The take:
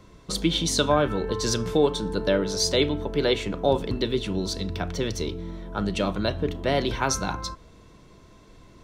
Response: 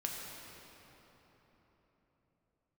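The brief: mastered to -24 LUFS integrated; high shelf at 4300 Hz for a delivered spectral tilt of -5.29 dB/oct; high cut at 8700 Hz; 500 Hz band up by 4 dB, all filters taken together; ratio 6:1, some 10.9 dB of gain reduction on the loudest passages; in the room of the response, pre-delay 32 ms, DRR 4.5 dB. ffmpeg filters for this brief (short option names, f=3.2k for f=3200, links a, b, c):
-filter_complex "[0:a]lowpass=8.7k,equalizer=f=500:t=o:g=5,highshelf=f=4.3k:g=-8,acompressor=threshold=-24dB:ratio=6,asplit=2[a][b];[1:a]atrim=start_sample=2205,adelay=32[c];[b][c]afir=irnorm=-1:irlink=0,volume=-6.5dB[d];[a][d]amix=inputs=2:normalize=0,volume=4dB"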